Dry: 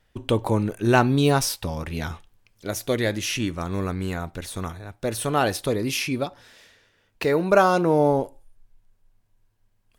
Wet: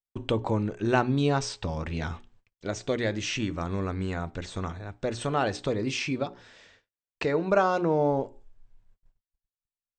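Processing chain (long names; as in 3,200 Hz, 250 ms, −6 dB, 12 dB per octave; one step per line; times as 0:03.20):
mains-hum notches 60/120/180/240/300/360/420 Hz
noise gate −56 dBFS, range −41 dB
high-shelf EQ 4,300 Hz −7 dB
in parallel at +2.5 dB: downward compressor, threshold −28 dBFS, peak gain reduction 15.5 dB
on the sum: linear-phase brick-wall low-pass 8,500 Hz
level −7.5 dB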